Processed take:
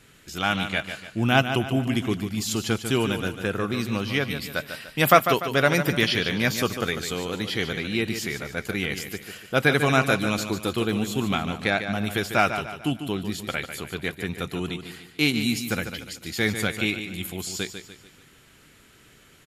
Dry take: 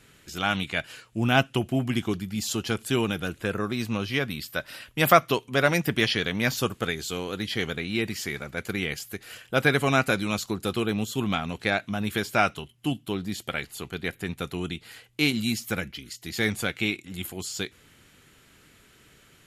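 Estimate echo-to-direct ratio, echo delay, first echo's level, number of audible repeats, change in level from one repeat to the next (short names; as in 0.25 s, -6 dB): -8.0 dB, 0.147 s, -9.0 dB, 4, -7.5 dB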